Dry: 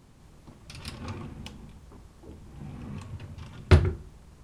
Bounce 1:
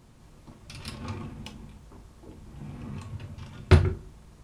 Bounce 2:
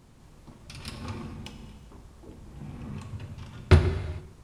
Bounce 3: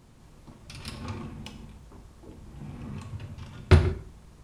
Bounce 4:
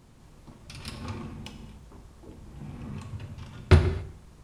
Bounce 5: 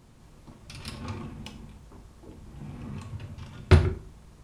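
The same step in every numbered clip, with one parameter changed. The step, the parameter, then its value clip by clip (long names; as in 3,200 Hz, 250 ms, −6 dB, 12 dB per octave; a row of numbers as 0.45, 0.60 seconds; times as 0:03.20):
reverb whose tail is shaped and stops, gate: 80, 480, 200, 300, 140 milliseconds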